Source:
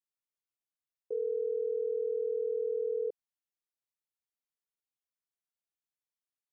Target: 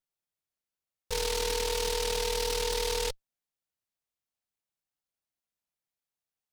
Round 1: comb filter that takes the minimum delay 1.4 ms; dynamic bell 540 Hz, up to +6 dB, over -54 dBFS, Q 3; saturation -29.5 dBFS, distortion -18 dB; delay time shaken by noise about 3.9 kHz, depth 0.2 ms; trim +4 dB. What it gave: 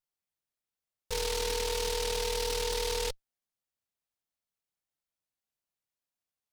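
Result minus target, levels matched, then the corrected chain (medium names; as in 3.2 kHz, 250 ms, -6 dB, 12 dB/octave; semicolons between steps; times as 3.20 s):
saturation: distortion +12 dB
comb filter that takes the minimum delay 1.4 ms; dynamic bell 540 Hz, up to +6 dB, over -54 dBFS, Q 3; saturation -22.5 dBFS, distortion -29 dB; delay time shaken by noise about 3.9 kHz, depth 0.2 ms; trim +4 dB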